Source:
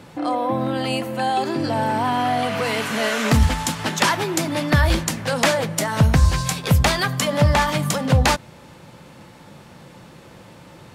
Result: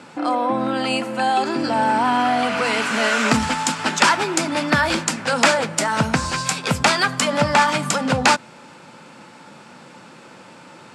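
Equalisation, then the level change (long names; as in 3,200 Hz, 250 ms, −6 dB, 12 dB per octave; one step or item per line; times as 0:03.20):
loudspeaker in its box 200–10,000 Hz, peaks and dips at 240 Hz +5 dB, 890 Hz +4 dB, 1,400 Hz +8 dB, 2,500 Hz +5 dB, 4,900 Hz +4 dB, 7,700 Hz +5 dB
0.0 dB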